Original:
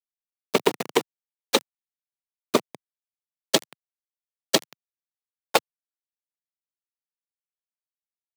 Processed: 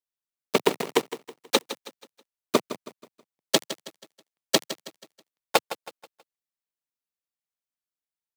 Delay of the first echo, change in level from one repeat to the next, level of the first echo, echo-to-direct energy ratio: 161 ms, -8.0 dB, -13.5 dB, -13.0 dB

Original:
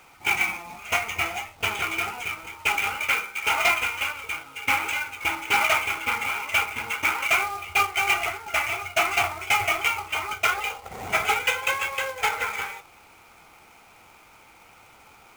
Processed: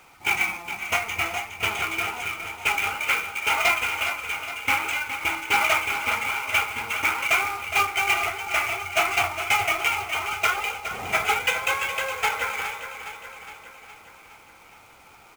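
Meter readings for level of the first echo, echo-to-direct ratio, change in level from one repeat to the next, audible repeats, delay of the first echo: -10.0 dB, -8.5 dB, -5.0 dB, 6, 414 ms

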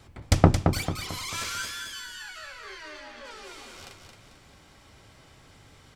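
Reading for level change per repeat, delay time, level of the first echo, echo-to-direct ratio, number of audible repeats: -7.5 dB, 222 ms, -6.0 dB, -5.0 dB, 4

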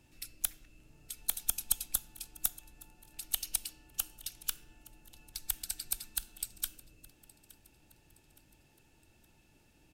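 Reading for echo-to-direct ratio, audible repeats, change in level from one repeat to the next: -21.0 dB, 2, -7.0 dB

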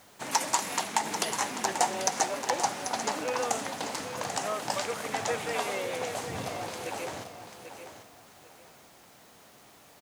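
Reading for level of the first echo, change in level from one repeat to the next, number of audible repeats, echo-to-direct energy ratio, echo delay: -9.5 dB, -12.0 dB, 2, -9.0 dB, 790 ms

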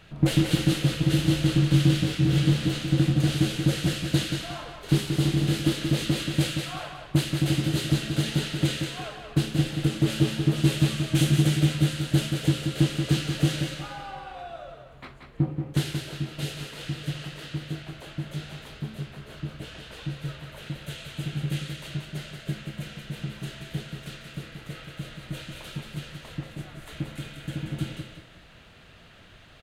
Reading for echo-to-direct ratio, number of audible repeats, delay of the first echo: -5.5 dB, 3, 181 ms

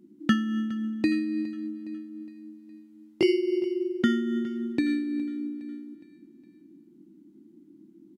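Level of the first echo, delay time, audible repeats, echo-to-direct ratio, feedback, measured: -18.5 dB, 413 ms, 3, -17.5 dB, 50%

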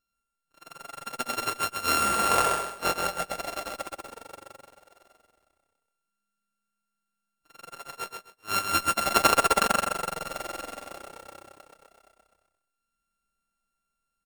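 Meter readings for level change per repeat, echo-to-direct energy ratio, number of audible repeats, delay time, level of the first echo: -13.0 dB, -5.0 dB, 3, 130 ms, -5.0 dB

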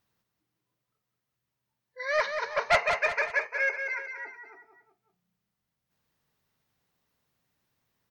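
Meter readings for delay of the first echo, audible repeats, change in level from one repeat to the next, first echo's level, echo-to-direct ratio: 185 ms, 3, -7.0 dB, -7.0 dB, -6.0 dB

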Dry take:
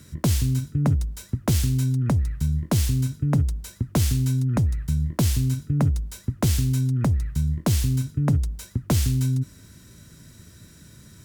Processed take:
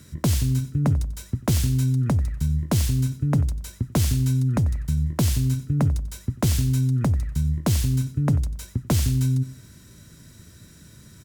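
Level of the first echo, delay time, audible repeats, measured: -17.5 dB, 92 ms, 2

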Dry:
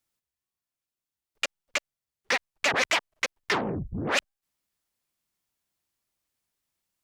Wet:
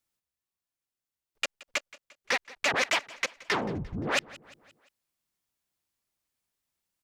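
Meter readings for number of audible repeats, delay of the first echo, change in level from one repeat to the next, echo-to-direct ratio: 3, 174 ms, -6.0 dB, -19.5 dB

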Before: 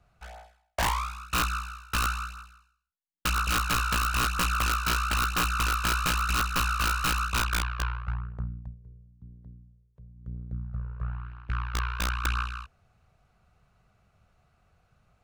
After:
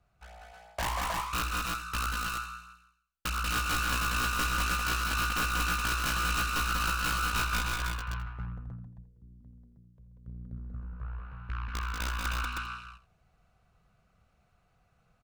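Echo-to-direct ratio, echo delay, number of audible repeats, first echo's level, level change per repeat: 1.0 dB, 61 ms, 6, -13.5 dB, no regular repeats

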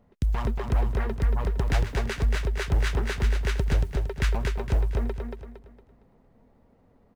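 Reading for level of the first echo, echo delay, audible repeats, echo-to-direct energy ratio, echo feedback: -4.5 dB, 230 ms, 4, -4.0 dB, 37%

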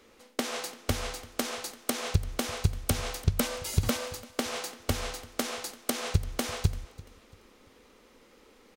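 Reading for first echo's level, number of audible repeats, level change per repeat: -20.5 dB, 2, -9.5 dB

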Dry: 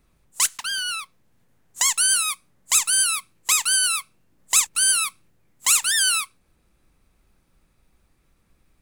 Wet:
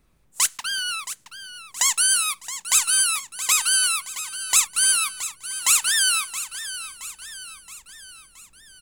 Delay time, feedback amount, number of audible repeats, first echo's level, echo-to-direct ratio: 672 ms, 52%, 4, -12.5 dB, -11.0 dB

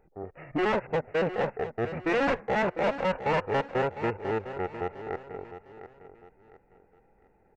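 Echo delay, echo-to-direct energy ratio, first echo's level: 705 ms, -11.5 dB, -12.0 dB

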